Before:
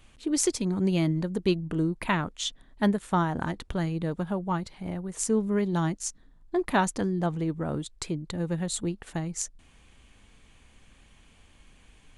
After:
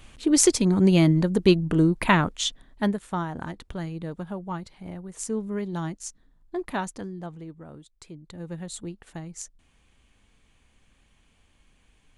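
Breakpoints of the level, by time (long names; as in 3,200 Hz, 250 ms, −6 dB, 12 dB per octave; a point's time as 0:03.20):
0:02.25 +7 dB
0:03.15 −4 dB
0:06.61 −4 dB
0:07.89 −15 dB
0:08.52 −6 dB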